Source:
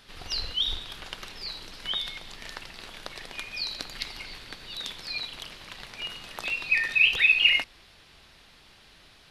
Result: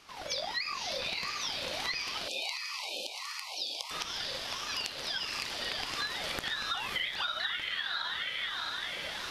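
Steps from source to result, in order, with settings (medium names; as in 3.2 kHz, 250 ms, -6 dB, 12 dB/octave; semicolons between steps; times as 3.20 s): recorder AGC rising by 10 dB/s; echo that smears into a reverb 564 ms, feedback 46%, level -3 dB; compression 6:1, threshold -29 dBFS, peak gain reduction 14 dB; 2.28–3.91 s: brick-wall FIR band-stop 340–2900 Hz; ring modulator with a swept carrier 870 Hz, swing 40%, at 1.5 Hz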